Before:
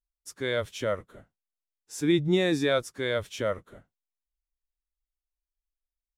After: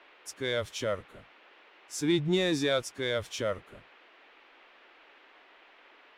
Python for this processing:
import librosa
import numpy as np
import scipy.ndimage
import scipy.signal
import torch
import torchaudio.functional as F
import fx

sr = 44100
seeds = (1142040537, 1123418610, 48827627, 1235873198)

p1 = fx.dynamic_eq(x, sr, hz=5000.0, q=0.87, threshold_db=-47.0, ratio=4.0, max_db=6)
p2 = fx.dmg_noise_band(p1, sr, seeds[0], low_hz=300.0, high_hz=2900.0, level_db=-56.0)
p3 = 10.0 ** (-24.5 / 20.0) * np.tanh(p2 / 10.0 ** (-24.5 / 20.0))
p4 = p2 + F.gain(torch.from_numpy(p3), -5.5).numpy()
y = F.gain(torch.from_numpy(p4), -5.5).numpy()